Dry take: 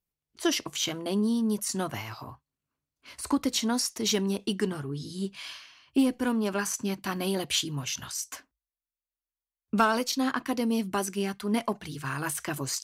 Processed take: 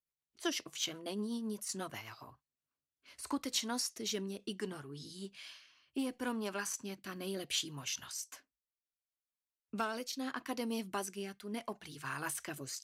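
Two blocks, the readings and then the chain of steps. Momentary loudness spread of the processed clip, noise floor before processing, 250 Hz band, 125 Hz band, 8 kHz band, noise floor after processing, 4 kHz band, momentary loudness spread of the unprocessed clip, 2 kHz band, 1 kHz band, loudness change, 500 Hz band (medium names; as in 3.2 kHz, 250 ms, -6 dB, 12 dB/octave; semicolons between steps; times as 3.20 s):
12 LU, under -85 dBFS, -12.5 dB, -13.5 dB, -8.0 dB, under -85 dBFS, -8.0 dB, 10 LU, -9.0 dB, -11.0 dB, -10.5 dB, -10.5 dB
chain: bass shelf 320 Hz -9 dB; rotary cabinet horn 8 Hz, later 0.7 Hz, at 2.00 s; trim -5.5 dB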